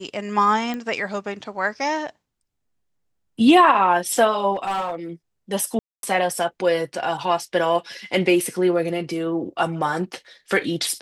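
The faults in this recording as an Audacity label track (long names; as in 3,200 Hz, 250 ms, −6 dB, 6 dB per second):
0.740000	0.740000	click −16 dBFS
4.540000	4.950000	clipping −20.5 dBFS
5.790000	6.030000	drop-out 242 ms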